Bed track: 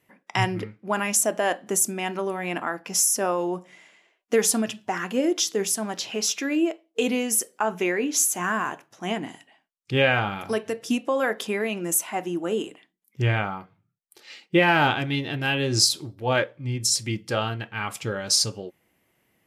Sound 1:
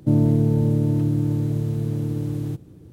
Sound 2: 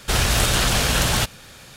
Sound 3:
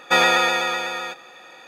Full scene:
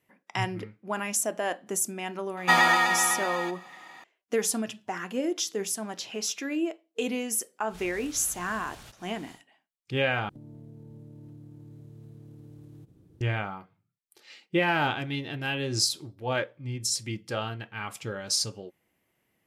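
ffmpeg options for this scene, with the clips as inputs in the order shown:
-filter_complex "[0:a]volume=-6dB[a];[3:a]aecho=1:1:1:0.72[b];[2:a]acompressor=threshold=-36dB:ratio=4:attack=0.13:release=186:knee=1:detection=peak[c];[1:a]acompressor=threshold=-33dB:ratio=6:attack=3.2:release=140:knee=1:detection=peak[d];[a]asplit=2[e][f];[e]atrim=end=10.294[g];[d]atrim=end=2.92,asetpts=PTS-STARTPTS,volume=-12dB[h];[f]atrim=start=13.206[i];[b]atrim=end=1.67,asetpts=PTS-STARTPTS,volume=-4dB,afade=t=in:d=0.004:c=hsin,afade=t=out:st=1.666:d=0.004:c=hsin,adelay=2370[j];[c]atrim=end=1.76,asetpts=PTS-STARTPTS,volume=-10dB,afade=t=in:d=0.1,afade=t=out:st=1.66:d=0.1,adelay=7660[k];[g][h]acrossfade=d=0.004:c1=hsin:c2=hsin[l];[l][i]acrossfade=d=0.004:c1=hsin:c2=hsin[m];[m][j][k]amix=inputs=3:normalize=0"

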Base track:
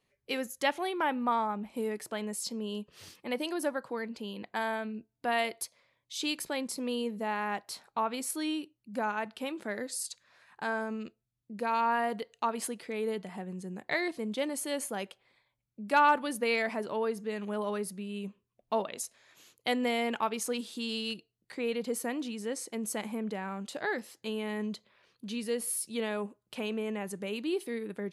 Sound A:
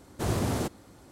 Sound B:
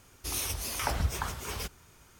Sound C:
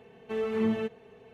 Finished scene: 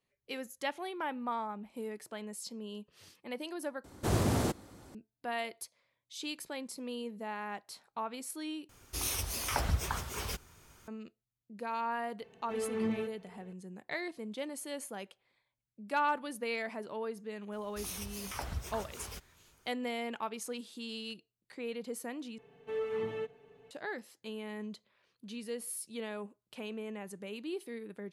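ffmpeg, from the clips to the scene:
-filter_complex "[2:a]asplit=2[a][b];[3:a]asplit=2[c][d];[0:a]volume=-7dB[e];[d]aecho=1:1:6.9:0.8[f];[e]asplit=4[g][h][i][j];[g]atrim=end=3.844[k];[1:a]atrim=end=1.11,asetpts=PTS-STARTPTS,volume=-1dB[l];[h]atrim=start=4.946:end=8.694[m];[a]atrim=end=2.19,asetpts=PTS-STARTPTS,volume=-1.5dB[n];[i]atrim=start=10.876:end=22.384[o];[f]atrim=end=1.33,asetpts=PTS-STARTPTS,volume=-9dB[p];[j]atrim=start=23.706[q];[c]atrim=end=1.33,asetpts=PTS-STARTPTS,volume=-6dB,afade=t=in:d=0.004:c=hsin,afade=t=out:st=1.326:d=0.004:c=hsin,adelay=538020S[r];[b]atrim=end=2.19,asetpts=PTS-STARTPTS,volume=-9dB,afade=t=in:d=0.004:c=hsin,afade=t=out:st=2.186:d=0.004:c=hsin,adelay=17520[s];[k][l]acrossfade=d=0.004:c1=hsin:c2=hsin[t];[t][m]acrossfade=d=0.004:c1=hsin:c2=hsin[u];[u][n]acrossfade=d=0.004:c1=hsin:c2=hsin[v];[v][o]acrossfade=d=0.004:c1=hsin:c2=hsin[w];[w][p]acrossfade=d=0.004:c1=hsin:c2=hsin[x];[x][q]acrossfade=d=0.004:c1=hsin:c2=hsin[y];[y][r][s]amix=inputs=3:normalize=0"

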